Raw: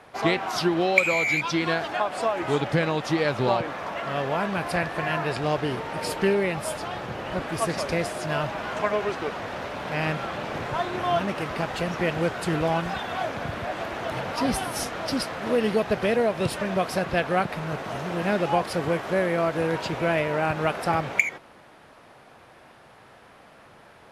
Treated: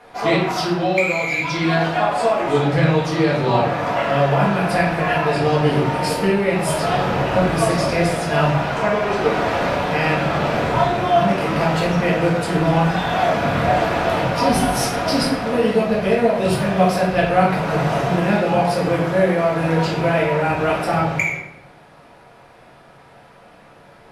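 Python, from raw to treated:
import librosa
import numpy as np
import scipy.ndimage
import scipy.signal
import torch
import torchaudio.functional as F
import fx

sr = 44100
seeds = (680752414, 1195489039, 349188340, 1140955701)

y = fx.rider(x, sr, range_db=10, speed_s=0.5)
y = fx.room_shoebox(y, sr, seeds[0], volume_m3=170.0, walls='mixed', distance_m=1.8)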